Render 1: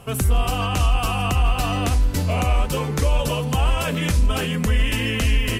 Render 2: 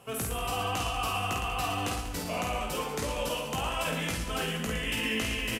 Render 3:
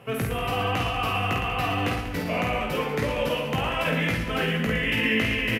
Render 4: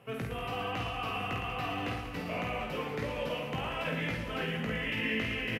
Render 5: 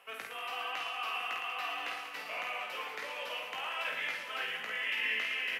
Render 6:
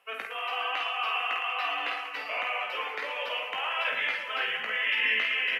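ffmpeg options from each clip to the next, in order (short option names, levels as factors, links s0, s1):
-filter_complex "[0:a]highpass=f=300:p=1,asplit=2[s0][s1];[s1]adelay=18,volume=0.473[s2];[s0][s2]amix=inputs=2:normalize=0,asplit=2[s3][s4];[s4]aecho=0:1:50|112.5|190.6|288.3|410.4:0.631|0.398|0.251|0.158|0.1[s5];[s3][s5]amix=inputs=2:normalize=0,volume=0.376"
-af "equalizer=f=125:t=o:w=1:g=10,equalizer=f=250:t=o:w=1:g=5,equalizer=f=500:t=o:w=1:g=6,equalizer=f=2000:t=o:w=1:g=11,equalizer=f=8000:t=o:w=1:g=-10"
-filter_complex "[0:a]bandreject=f=50:t=h:w=6,bandreject=f=100:t=h:w=6,acrossover=split=6200[s0][s1];[s1]acompressor=threshold=0.00282:ratio=4:attack=1:release=60[s2];[s0][s2]amix=inputs=2:normalize=0,aecho=1:1:1006:0.251,volume=0.355"
-af "highpass=1000,areverse,acompressor=mode=upward:threshold=0.01:ratio=2.5,areverse,volume=1.19"
-af "afftdn=nr=13:nf=-49,volume=2.24"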